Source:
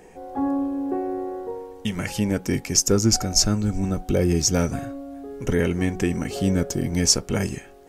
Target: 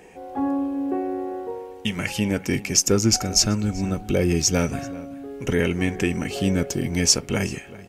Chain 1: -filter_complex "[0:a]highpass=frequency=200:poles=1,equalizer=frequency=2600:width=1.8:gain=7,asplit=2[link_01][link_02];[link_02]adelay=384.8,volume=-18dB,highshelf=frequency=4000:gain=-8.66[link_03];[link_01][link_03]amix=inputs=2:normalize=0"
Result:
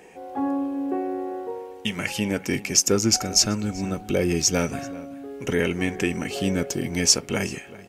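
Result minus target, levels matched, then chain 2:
125 Hz band −3.5 dB
-filter_complex "[0:a]highpass=frequency=57:poles=1,equalizer=frequency=2600:width=1.8:gain=7,asplit=2[link_01][link_02];[link_02]adelay=384.8,volume=-18dB,highshelf=frequency=4000:gain=-8.66[link_03];[link_01][link_03]amix=inputs=2:normalize=0"

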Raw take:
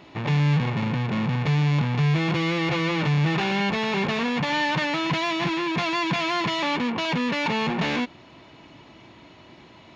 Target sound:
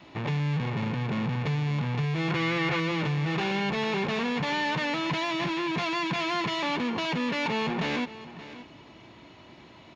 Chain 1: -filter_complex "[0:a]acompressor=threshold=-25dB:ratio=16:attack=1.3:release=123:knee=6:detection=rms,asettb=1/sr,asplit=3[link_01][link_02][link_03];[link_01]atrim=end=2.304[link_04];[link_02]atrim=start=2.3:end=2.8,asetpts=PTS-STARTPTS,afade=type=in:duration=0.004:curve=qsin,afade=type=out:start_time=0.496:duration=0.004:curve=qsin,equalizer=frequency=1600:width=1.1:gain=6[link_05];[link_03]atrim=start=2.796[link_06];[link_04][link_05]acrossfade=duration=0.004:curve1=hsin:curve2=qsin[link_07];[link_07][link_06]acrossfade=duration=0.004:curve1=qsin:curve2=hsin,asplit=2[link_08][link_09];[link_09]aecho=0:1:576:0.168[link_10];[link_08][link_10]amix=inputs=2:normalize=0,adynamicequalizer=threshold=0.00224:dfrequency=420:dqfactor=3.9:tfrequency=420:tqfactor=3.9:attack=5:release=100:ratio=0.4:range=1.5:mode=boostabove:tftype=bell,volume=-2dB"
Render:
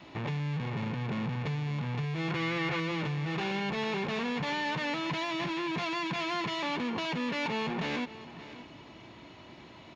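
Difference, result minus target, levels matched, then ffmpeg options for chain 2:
downward compressor: peak gain reduction +5.5 dB
-filter_complex "[0:a]acompressor=threshold=-19dB:ratio=16:attack=1.3:release=123:knee=6:detection=rms,asettb=1/sr,asplit=3[link_01][link_02][link_03];[link_01]atrim=end=2.304[link_04];[link_02]atrim=start=2.3:end=2.8,asetpts=PTS-STARTPTS,afade=type=in:duration=0.004:curve=qsin,afade=type=out:start_time=0.496:duration=0.004:curve=qsin,equalizer=frequency=1600:width=1.1:gain=6[link_05];[link_03]atrim=start=2.796[link_06];[link_04][link_05]acrossfade=duration=0.004:curve1=hsin:curve2=qsin[link_07];[link_07][link_06]acrossfade=duration=0.004:curve1=qsin:curve2=hsin,asplit=2[link_08][link_09];[link_09]aecho=0:1:576:0.168[link_10];[link_08][link_10]amix=inputs=2:normalize=0,adynamicequalizer=threshold=0.00224:dfrequency=420:dqfactor=3.9:tfrequency=420:tqfactor=3.9:attack=5:release=100:ratio=0.4:range=1.5:mode=boostabove:tftype=bell,volume=-2dB"

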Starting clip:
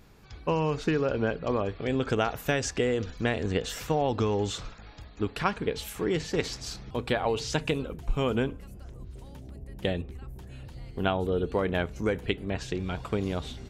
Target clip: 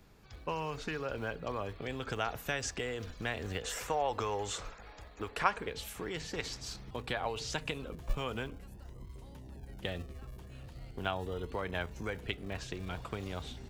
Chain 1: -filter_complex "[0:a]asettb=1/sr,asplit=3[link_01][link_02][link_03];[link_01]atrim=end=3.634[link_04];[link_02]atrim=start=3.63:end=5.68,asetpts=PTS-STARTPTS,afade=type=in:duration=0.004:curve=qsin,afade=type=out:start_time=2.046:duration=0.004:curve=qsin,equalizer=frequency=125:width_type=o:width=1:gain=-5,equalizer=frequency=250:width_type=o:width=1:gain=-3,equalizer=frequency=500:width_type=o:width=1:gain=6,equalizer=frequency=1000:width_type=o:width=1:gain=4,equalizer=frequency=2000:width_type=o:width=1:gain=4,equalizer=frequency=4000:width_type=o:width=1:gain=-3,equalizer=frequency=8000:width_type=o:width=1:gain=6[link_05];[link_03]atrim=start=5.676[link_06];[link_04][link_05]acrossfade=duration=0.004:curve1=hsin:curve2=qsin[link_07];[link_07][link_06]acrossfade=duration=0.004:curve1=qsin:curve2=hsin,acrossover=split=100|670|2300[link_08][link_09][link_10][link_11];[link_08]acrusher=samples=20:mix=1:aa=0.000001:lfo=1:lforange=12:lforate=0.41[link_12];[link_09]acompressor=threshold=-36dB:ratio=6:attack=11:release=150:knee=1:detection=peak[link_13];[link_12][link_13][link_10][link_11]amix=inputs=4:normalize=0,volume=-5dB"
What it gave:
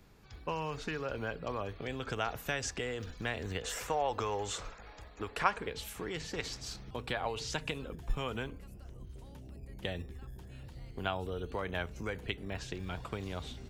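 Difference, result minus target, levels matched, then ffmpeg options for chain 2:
sample-and-hold swept by an LFO: distortion −10 dB
-filter_complex "[0:a]asettb=1/sr,asplit=3[link_01][link_02][link_03];[link_01]atrim=end=3.634[link_04];[link_02]atrim=start=3.63:end=5.68,asetpts=PTS-STARTPTS,afade=type=in:duration=0.004:curve=qsin,afade=type=out:start_time=2.046:duration=0.004:curve=qsin,equalizer=frequency=125:width_type=o:width=1:gain=-5,equalizer=frequency=250:width_type=o:width=1:gain=-3,equalizer=frequency=500:width_type=o:width=1:gain=6,equalizer=frequency=1000:width_type=o:width=1:gain=4,equalizer=frequency=2000:width_type=o:width=1:gain=4,equalizer=frequency=4000:width_type=o:width=1:gain=-3,equalizer=frequency=8000:width_type=o:width=1:gain=6[link_05];[link_03]atrim=start=5.676[link_06];[link_04][link_05]acrossfade=duration=0.004:curve1=hsin:curve2=qsin[link_07];[link_07][link_06]acrossfade=duration=0.004:curve1=qsin:curve2=hsin,acrossover=split=100|670|2300[link_08][link_09][link_10][link_11];[link_08]acrusher=samples=60:mix=1:aa=0.000001:lfo=1:lforange=36:lforate=0.41[link_12];[link_09]acompressor=threshold=-36dB:ratio=6:attack=11:release=150:knee=1:detection=peak[link_13];[link_12][link_13][link_10][link_11]amix=inputs=4:normalize=0,volume=-5dB"

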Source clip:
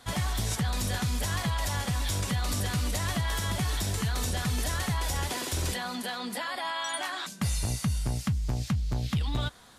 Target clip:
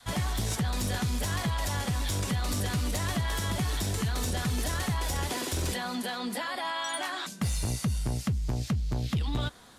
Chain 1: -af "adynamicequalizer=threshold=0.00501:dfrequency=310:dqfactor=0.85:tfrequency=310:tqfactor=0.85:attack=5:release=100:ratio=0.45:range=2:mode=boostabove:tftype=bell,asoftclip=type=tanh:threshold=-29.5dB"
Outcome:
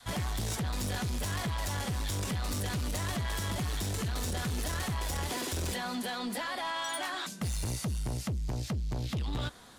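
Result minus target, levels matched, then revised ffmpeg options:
soft clipping: distortion +10 dB
-af "adynamicequalizer=threshold=0.00501:dfrequency=310:dqfactor=0.85:tfrequency=310:tqfactor=0.85:attack=5:release=100:ratio=0.45:range=2:mode=boostabove:tftype=bell,asoftclip=type=tanh:threshold=-21dB"

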